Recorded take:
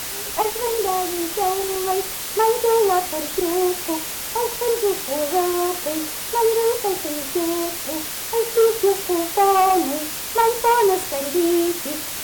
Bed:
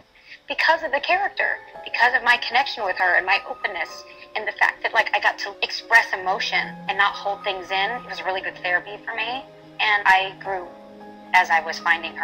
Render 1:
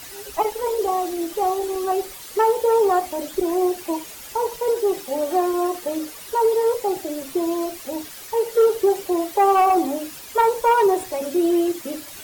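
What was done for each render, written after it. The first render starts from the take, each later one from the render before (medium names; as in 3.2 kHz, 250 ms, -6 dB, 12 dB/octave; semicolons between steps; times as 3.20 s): noise reduction 12 dB, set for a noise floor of -29 dBFS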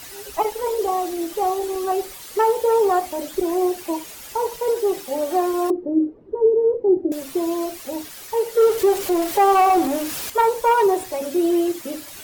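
5.70–7.12 s: resonant low-pass 350 Hz, resonance Q 3.3; 8.62–10.30 s: jump at every zero crossing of -26 dBFS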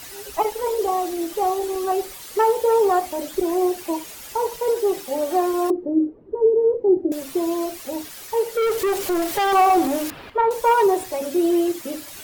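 5.92–6.56 s: distance through air 210 m; 8.42–9.53 s: hard clipper -18 dBFS; 10.10–10.51 s: distance through air 440 m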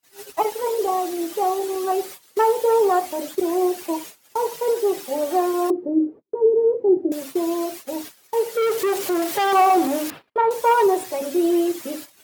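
high-pass 140 Hz 12 dB/octave; gate -35 dBFS, range -41 dB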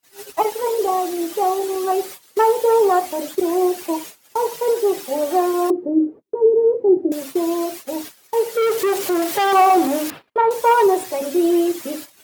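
trim +2.5 dB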